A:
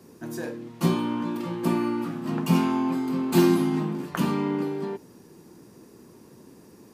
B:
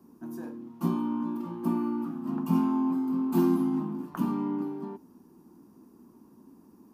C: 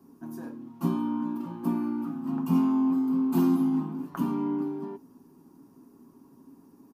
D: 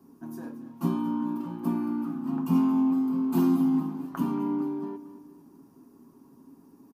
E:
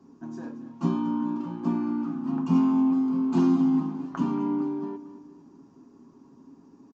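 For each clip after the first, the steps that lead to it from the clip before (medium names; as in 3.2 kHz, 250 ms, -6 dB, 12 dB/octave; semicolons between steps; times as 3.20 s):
graphic EQ 125/250/500/1000/2000/4000/8000 Hz -9/+9/-11/+6/-12/-9/-9 dB; trim -5.5 dB
comb 7.3 ms, depth 46%
feedback delay 227 ms, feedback 47%, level -15 dB
resampled via 16 kHz; trim +1.5 dB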